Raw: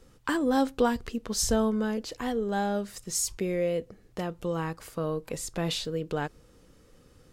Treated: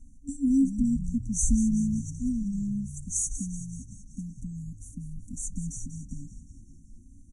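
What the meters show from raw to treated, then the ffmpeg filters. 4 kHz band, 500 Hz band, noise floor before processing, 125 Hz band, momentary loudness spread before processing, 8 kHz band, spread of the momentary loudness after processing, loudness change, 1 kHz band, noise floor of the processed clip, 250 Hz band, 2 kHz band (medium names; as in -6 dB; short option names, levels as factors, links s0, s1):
under -30 dB, under -35 dB, -58 dBFS, +2.5 dB, 9 LU, +1.5 dB, 18 LU, +0.5 dB, under -40 dB, -51 dBFS, +3.0 dB, under -40 dB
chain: -filter_complex "[0:a]aecho=1:1:3.6:0.62,afftfilt=real='re*(1-between(b*sr/4096,280,5700))':imag='im*(1-between(b*sr/4096,280,5700))':win_size=4096:overlap=0.75,aresample=22050,aresample=44100,lowshelf=f=89:g=8,asplit=2[s0][s1];[s1]asplit=6[s2][s3][s4][s5][s6][s7];[s2]adelay=190,afreqshift=-59,volume=0.251[s8];[s3]adelay=380,afreqshift=-118,volume=0.141[s9];[s4]adelay=570,afreqshift=-177,volume=0.0785[s10];[s5]adelay=760,afreqshift=-236,volume=0.0442[s11];[s6]adelay=950,afreqshift=-295,volume=0.0248[s12];[s7]adelay=1140,afreqshift=-354,volume=0.0138[s13];[s8][s9][s10][s11][s12][s13]amix=inputs=6:normalize=0[s14];[s0][s14]amix=inputs=2:normalize=0"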